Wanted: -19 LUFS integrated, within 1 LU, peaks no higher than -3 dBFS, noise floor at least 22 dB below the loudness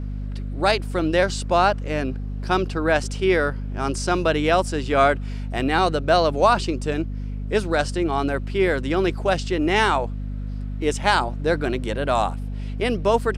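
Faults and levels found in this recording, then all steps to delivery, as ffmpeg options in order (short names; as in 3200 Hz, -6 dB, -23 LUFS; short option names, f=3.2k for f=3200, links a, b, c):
hum 50 Hz; harmonics up to 250 Hz; hum level -26 dBFS; loudness -22.5 LUFS; peak -4.0 dBFS; loudness target -19.0 LUFS
-> -af "bandreject=f=50:t=h:w=6,bandreject=f=100:t=h:w=6,bandreject=f=150:t=h:w=6,bandreject=f=200:t=h:w=6,bandreject=f=250:t=h:w=6"
-af "volume=3.5dB,alimiter=limit=-3dB:level=0:latency=1"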